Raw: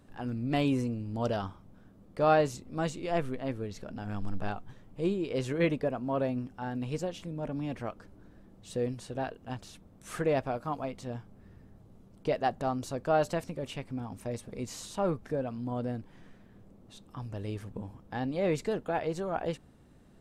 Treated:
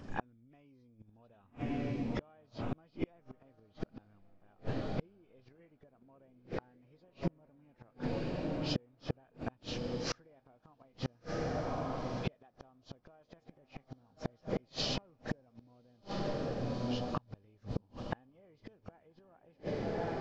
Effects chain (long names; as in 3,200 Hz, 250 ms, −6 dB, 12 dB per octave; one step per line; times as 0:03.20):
hearing-aid frequency compression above 1,900 Hz 1.5 to 1
downward compressor 6 to 1, threshold −33 dBFS, peak gain reduction 13 dB
on a send: feedback delay with all-pass diffusion 1,182 ms, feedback 48%, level −9.5 dB
on the sum: gate with flip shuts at −31 dBFS, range −36 dB
level +9.5 dB